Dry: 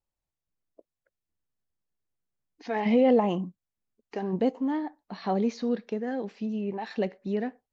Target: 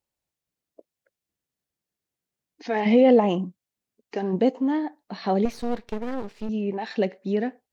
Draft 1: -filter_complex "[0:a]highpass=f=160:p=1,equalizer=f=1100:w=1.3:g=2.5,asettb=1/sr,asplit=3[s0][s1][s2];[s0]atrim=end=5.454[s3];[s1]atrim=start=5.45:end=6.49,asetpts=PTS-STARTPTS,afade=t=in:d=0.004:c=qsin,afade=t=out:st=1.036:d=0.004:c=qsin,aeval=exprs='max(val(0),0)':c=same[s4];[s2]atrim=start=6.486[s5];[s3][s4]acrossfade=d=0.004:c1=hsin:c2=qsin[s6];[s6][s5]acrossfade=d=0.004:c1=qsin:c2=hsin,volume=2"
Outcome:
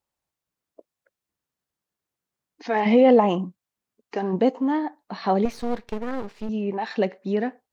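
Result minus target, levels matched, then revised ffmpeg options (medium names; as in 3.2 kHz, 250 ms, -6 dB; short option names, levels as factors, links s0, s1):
1 kHz band +3.0 dB
-filter_complex "[0:a]highpass=f=160:p=1,equalizer=f=1100:w=1.3:g=-4,asettb=1/sr,asplit=3[s0][s1][s2];[s0]atrim=end=5.454[s3];[s1]atrim=start=5.45:end=6.49,asetpts=PTS-STARTPTS,afade=t=in:d=0.004:c=qsin,afade=t=out:st=1.036:d=0.004:c=qsin,aeval=exprs='max(val(0),0)':c=same[s4];[s2]atrim=start=6.486[s5];[s3][s4]acrossfade=d=0.004:c1=hsin:c2=qsin[s6];[s6][s5]acrossfade=d=0.004:c1=qsin:c2=hsin,volume=2"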